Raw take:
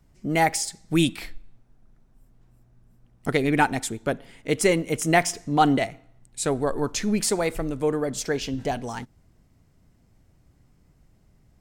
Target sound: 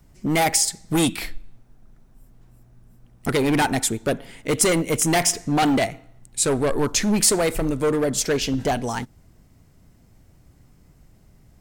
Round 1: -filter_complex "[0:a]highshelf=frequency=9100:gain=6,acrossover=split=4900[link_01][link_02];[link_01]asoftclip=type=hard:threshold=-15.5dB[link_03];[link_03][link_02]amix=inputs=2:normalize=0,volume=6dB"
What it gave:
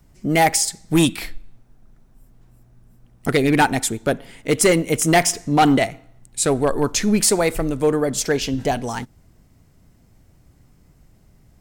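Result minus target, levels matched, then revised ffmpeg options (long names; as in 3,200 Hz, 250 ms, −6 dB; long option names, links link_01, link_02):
hard clipping: distortion −7 dB
-filter_complex "[0:a]highshelf=frequency=9100:gain=6,acrossover=split=4900[link_01][link_02];[link_01]asoftclip=type=hard:threshold=-22.5dB[link_03];[link_03][link_02]amix=inputs=2:normalize=0,volume=6dB"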